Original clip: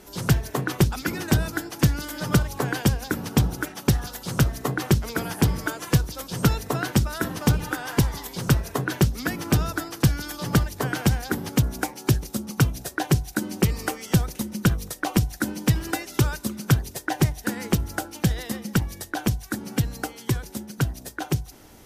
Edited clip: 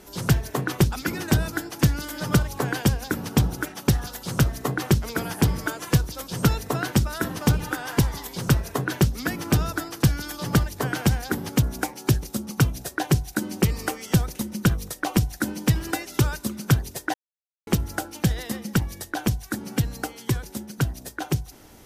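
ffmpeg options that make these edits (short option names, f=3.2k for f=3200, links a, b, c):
-filter_complex "[0:a]asplit=3[a][b][c];[a]atrim=end=17.14,asetpts=PTS-STARTPTS,afade=t=out:st=17.136:d=0.004:c=hsin[d];[b]atrim=start=17.14:end=17.67,asetpts=PTS-STARTPTS,volume=0[e];[c]atrim=start=17.67,asetpts=PTS-STARTPTS,afade=t=in:d=0.004:c=hsin[f];[d][e][f]concat=n=3:v=0:a=1"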